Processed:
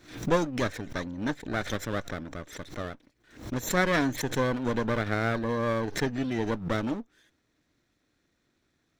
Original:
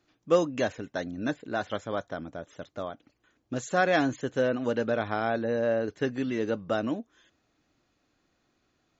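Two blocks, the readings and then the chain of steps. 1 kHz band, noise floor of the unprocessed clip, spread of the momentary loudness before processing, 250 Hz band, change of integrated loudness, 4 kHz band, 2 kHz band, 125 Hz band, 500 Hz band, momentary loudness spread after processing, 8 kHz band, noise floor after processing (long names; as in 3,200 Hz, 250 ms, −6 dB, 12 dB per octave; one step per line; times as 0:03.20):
−0.5 dB, −74 dBFS, 13 LU, +1.0 dB, −0.5 dB, +3.0 dB, +1.0 dB, +6.0 dB, −3.0 dB, 12 LU, can't be measured, −74 dBFS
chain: lower of the sound and its delayed copy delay 0.52 ms
background raised ahead of every attack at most 120 dB per second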